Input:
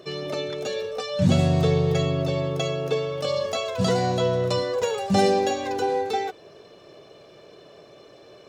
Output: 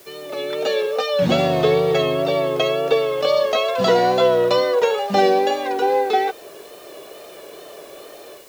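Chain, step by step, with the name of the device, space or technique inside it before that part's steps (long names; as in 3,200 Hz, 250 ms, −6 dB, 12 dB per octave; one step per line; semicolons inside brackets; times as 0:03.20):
dictaphone (band-pass filter 340–3,900 Hz; automatic gain control gain up to 13 dB; tape wow and flutter; white noise bed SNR 29 dB)
level −2.5 dB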